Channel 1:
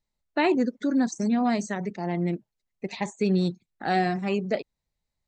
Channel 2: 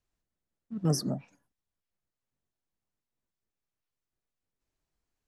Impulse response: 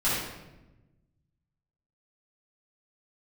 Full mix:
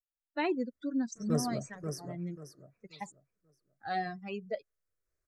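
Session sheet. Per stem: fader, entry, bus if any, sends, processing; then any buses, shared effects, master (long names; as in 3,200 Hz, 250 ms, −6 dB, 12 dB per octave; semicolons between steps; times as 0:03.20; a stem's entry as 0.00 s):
−6.5 dB, 0.00 s, muted 0:03.12–0:03.63, no send, no echo send, spectral dynamics exaggerated over time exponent 2
+0.5 dB, 0.45 s, no send, echo send −6.5 dB, high-shelf EQ 8,700 Hz −5 dB; phaser with its sweep stopped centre 850 Hz, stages 6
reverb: not used
echo: repeating echo 536 ms, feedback 28%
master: no processing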